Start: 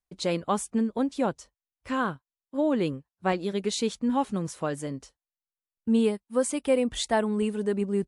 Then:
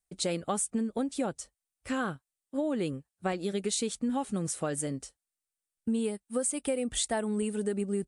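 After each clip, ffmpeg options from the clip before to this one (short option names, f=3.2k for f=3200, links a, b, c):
-af "equalizer=f=8.8k:t=o:w=0.6:g=12.5,bandreject=f=1k:w=5.4,acompressor=threshold=-27dB:ratio=6"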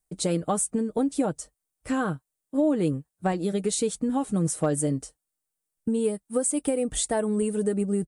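-af "equalizer=f=3k:t=o:w=2.7:g=-8.5,aecho=1:1:6.5:0.38,asoftclip=type=hard:threshold=-21.5dB,volume=7dB"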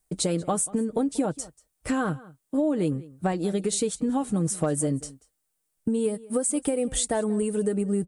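-filter_complex "[0:a]acompressor=threshold=-34dB:ratio=2,asplit=2[a][b];[b]adelay=186.6,volume=-20dB,highshelf=f=4k:g=-4.2[c];[a][c]amix=inputs=2:normalize=0,volume=6.5dB"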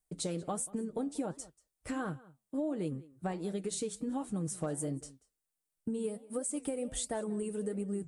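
-af "flanger=delay=4.1:depth=9.4:regen=-81:speed=1.4:shape=triangular,volume=-6dB"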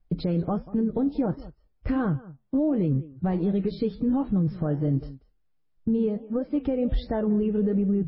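-af "aemphasis=mode=reproduction:type=riaa,alimiter=limit=-24dB:level=0:latency=1:release=28,volume=7.5dB" -ar 12000 -c:a libmp3lame -b:a 16k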